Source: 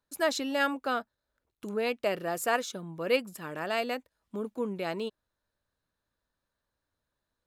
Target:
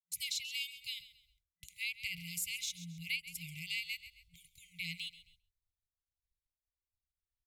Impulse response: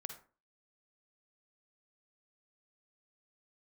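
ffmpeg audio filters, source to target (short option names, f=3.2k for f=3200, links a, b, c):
-filter_complex "[0:a]acrossover=split=230|1000[a][b][c];[a]acompressor=threshold=-54dB:ratio=6[d];[d][b][c]amix=inputs=3:normalize=0,asubboost=boost=6.5:cutoff=85,asplit=2[e][f];[f]aecho=0:1:133|266|399:0.141|0.0452|0.0145[g];[e][g]amix=inputs=2:normalize=0,agate=range=-33dB:threshold=-59dB:ratio=3:detection=peak,afftfilt=real='re*(1-between(b*sr/4096,180,2000))':imag='im*(1-between(b*sr/4096,180,2000))':win_size=4096:overlap=0.75,acrossover=split=380[h][i];[i]acompressor=threshold=-41dB:ratio=3[j];[h][j]amix=inputs=2:normalize=0,volume=4.5dB"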